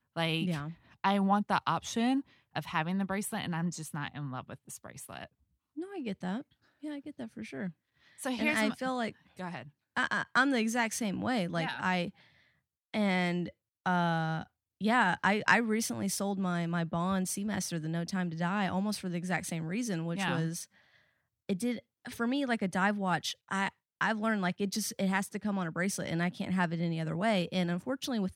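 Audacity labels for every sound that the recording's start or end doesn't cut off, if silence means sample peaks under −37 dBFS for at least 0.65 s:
12.940000	20.630000	sound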